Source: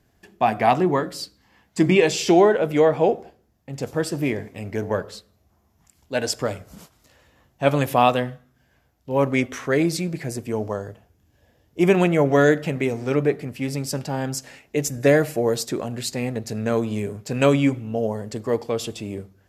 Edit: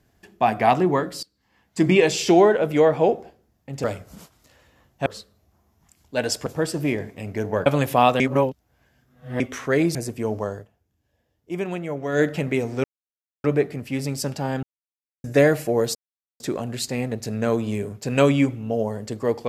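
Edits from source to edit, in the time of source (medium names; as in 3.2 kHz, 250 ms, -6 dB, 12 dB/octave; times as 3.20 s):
1.23–1.90 s: fade in linear, from -23 dB
3.84–5.04 s: swap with 6.44–7.66 s
8.20–9.40 s: reverse
9.95–10.24 s: delete
10.84–12.54 s: dip -11 dB, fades 0.13 s
13.13 s: insert silence 0.60 s
14.32–14.93 s: mute
15.64 s: insert silence 0.45 s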